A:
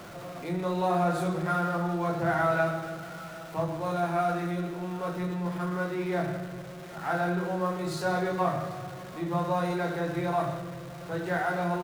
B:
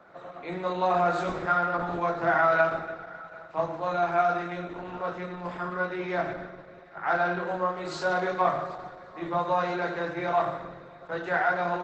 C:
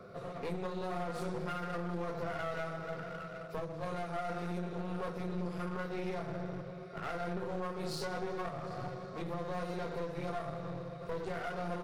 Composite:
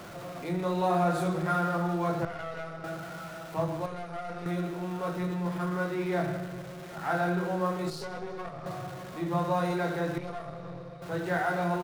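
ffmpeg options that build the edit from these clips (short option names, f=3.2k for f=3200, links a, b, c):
-filter_complex "[2:a]asplit=4[a][b][c][d];[0:a]asplit=5[e][f][g][h][i];[e]atrim=end=2.252[j];[a]atrim=start=2.248:end=2.842[k];[f]atrim=start=2.838:end=3.862[l];[b]atrim=start=3.858:end=4.462[m];[g]atrim=start=4.458:end=7.902[n];[c]atrim=start=7.898:end=8.662[o];[h]atrim=start=8.658:end=10.182[p];[d]atrim=start=10.178:end=11.022[q];[i]atrim=start=11.018[r];[j][k]acrossfade=d=0.004:c1=hsin:c2=hsin[s];[s][l]acrossfade=d=0.004:c1=hsin:c2=hsin[t];[t][m]acrossfade=d=0.004:c1=hsin:c2=hsin[u];[u][n]acrossfade=d=0.004:c1=hsin:c2=hsin[v];[v][o]acrossfade=d=0.004:c1=hsin:c2=hsin[w];[w][p]acrossfade=d=0.004:c1=hsin:c2=hsin[x];[x][q]acrossfade=d=0.004:c1=hsin:c2=hsin[y];[y][r]acrossfade=d=0.004:c1=hsin:c2=hsin"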